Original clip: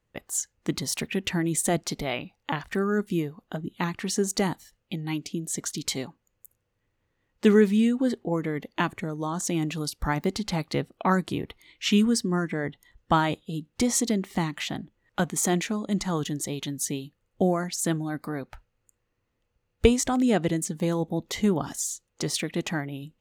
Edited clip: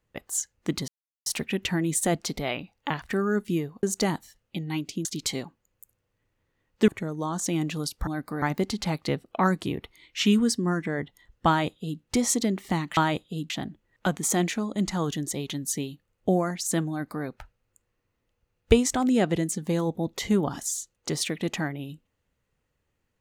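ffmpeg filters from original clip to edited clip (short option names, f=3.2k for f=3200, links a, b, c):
-filter_complex "[0:a]asplit=9[a][b][c][d][e][f][g][h][i];[a]atrim=end=0.88,asetpts=PTS-STARTPTS,afade=t=out:st=0.876:d=0.004:c=hsin,apad=pad_dur=0.38[j];[b]atrim=start=0.88:end=3.452,asetpts=PTS-STARTPTS,afade=t=in:d=0.004:c=hsin[k];[c]atrim=start=4.198:end=5.422[l];[d]atrim=start=5.668:end=7.502[m];[e]atrim=start=8.888:end=10.082[n];[f]atrim=start=18.028:end=18.382[o];[g]atrim=start=10.078:end=14.632[p];[h]atrim=start=13.138:end=13.672[q];[i]atrim=start=14.628[r];[j][k]concat=n=2:v=0:a=1[s];[s][l]acrossfade=d=0.004:c1=hsin:c2=hsin[t];[t][m]acrossfade=d=0.004:c1=hsin:c2=hsin[u];[u][n]acrossfade=d=0.004:c1=hsin:c2=hsin[v];[v][o]acrossfade=d=0.004:c1=hsin:c2=hsin[w];[w][p]acrossfade=d=0.004:c1=hsin:c2=hsin[x];[x][q]acrossfade=d=0.004:c1=hsin:c2=hsin[y];[y][r]acrossfade=d=0.004:c1=hsin:c2=hsin"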